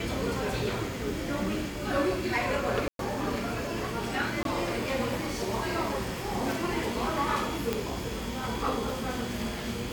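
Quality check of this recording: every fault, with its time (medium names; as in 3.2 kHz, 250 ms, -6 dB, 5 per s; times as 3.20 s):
2.88–2.99 s: dropout 112 ms
4.43–4.45 s: dropout 22 ms
7.73 s: pop -13 dBFS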